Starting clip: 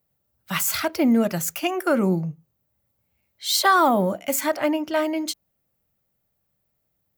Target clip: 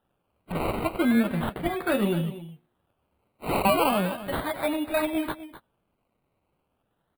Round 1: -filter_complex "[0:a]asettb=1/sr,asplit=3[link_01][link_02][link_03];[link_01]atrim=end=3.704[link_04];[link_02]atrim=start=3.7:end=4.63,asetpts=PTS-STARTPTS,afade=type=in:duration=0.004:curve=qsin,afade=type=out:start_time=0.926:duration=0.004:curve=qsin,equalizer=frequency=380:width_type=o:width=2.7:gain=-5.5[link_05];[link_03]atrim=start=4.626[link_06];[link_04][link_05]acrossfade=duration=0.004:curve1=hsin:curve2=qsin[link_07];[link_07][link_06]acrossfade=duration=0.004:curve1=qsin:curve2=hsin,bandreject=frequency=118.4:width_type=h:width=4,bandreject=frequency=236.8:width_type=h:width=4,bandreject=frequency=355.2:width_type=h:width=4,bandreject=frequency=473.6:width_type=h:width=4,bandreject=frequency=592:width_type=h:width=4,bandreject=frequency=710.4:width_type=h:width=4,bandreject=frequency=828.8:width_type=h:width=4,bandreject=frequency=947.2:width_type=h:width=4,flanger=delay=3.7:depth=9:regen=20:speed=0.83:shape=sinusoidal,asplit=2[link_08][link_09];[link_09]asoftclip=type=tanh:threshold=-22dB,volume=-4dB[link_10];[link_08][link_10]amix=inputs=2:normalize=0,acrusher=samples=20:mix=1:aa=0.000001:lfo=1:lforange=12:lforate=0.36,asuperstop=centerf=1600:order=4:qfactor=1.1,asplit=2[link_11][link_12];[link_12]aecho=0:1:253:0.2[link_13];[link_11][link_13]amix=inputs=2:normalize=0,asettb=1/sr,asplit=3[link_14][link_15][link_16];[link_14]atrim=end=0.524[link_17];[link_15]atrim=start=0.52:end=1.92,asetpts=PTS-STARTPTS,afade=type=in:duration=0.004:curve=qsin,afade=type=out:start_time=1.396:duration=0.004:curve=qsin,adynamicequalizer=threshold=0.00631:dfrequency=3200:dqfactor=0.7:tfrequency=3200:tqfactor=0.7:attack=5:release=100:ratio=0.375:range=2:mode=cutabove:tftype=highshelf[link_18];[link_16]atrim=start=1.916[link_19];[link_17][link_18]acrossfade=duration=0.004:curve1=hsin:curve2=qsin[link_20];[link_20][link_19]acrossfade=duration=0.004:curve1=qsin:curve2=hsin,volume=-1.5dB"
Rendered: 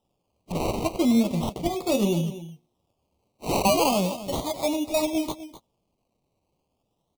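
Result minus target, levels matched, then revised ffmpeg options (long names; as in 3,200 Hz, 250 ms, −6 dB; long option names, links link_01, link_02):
8,000 Hz band +7.5 dB; soft clipping: distortion −7 dB
-filter_complex "[0:a]asettb=1/sr,asplit=3[link_01][link_02][link_03];[link_01]atrim=end=3.704[link_04];[link_02]atrim=start=3.7:end=4.63,asetpts=PTS-STARTPTS,afade=type=in:duration=0.004:curve=qsin,afade=type=out:start_time=0.926:duration=0.004:curve=qsin,equalizer=frequency=380:width_type=o:width=2.7:gain=-5.5[link_05];[link_03]atrim=start=4.626[link_06];[link_04][link_05]acrossfade=duration=0.004:curve1=hsin:curve2=qsin[link_07];[link_07][link_06]acrossfade=duration=0.004:curve1=qsin:curve2=hsin,bandreject=frequency=118.4:width_type=h:width=4,bandreject=frequency=236.8:width_type=h:width=4,bandreject=frequency=355.2:width_type=h:width=4,bandreject=frequency=473.6:width_type=h:width=4,bandreject=frequency=592:width_type=h:width=4,bandreject=frequency=710.4:width_type=h:width=4,bandreject=frequency=828.8:width_type=h:width=4,bandreject=frequency=947.2:width_type=h:width=4,flanger=delay=3.7:depth=9:regen=20:speed=0.83:shape=sinusoidal,asplit=2[link_08][link_09];[link_09]asoftclip=type=tanh:threshold=-33dB,volume=-4dB[link_10];[link_08][link_10]amix=inputs=2:normalize=0,acrusher=samples=20:mix=1:aa=0.000001:lfo=1:lforange=12:lforate=0.36,asuperstop=centerf=6000:order=4:qfactor=1.1,asplit=2[link_11][link_12];[link_12]aecho=0:1:253:0.2[link_13];[link_11][link_13]amix=inputs=2:normalize=0,asettb=1/sr,asplit=3[link_14][link_15][link_16];[link_14]atrim=end=0.524[link_17];[link_15]atrim=start=0.52:end=1.92,asetpts=PTS-STARTPTS,afade=type=in:duration=0.004:curve=qsin,afade=type=out:start_time=1.396:duration=0.004:curve=qsin,adynamicequalizer=threshold=0.00631:dfrequency=3200:dqfactor=0.7:tfrequency=3200:tqfactor=0.7:attack=5:release=100:ratio=0.375:range=2:mode=cutabove:tftype=highshelf[link_18];[link_16]atrim=start=1.916[link_19];[link_17][link_18]acrossfade=duration=0.004:curve1=hsin:curve2=qsin[link_20];[link_20][link_19]acrossfade=duration=0.004:curve1=qsin:curve2=hsin,volume=-1.5dB"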